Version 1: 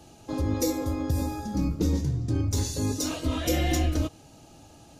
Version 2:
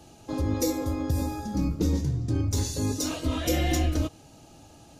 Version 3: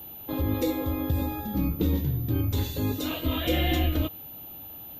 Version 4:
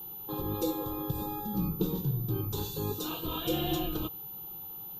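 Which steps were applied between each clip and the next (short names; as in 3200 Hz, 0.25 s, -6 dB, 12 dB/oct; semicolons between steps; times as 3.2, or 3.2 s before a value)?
nothing audible
resonant high shelf 4300 Hz -8 dB, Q 3; whine 14000 Hz -40 dBFS
fixed phaser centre 400 Hz, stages 8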